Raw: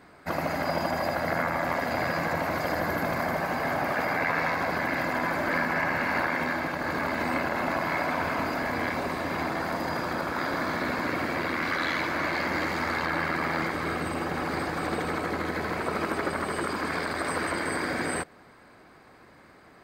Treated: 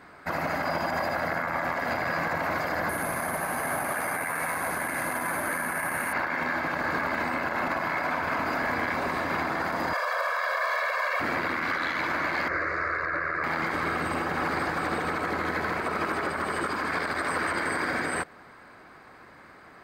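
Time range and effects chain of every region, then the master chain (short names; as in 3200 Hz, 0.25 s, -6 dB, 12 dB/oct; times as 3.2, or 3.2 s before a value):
2.89–6.13 careless resampling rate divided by 4×, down none, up zero stuff + air absorption 58 m
9.93–11.2 steep high-pass 510 Hz 48 dB/oct + comb 1.8 ms, depth 98%
12.48–13.44 LPF 3900 Hz + fixed phaser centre 850 Hz, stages 6
whole clip: bell 1400 Hz +6 dB 1.7 oct; limiter -19 dBFS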